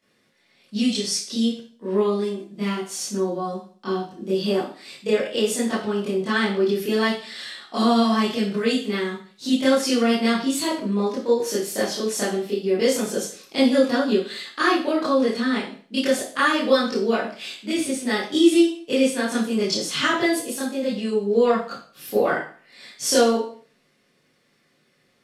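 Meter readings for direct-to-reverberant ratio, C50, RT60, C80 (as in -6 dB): -10.5 dB, 4.0 dB, 0.45 s, 9.5 dB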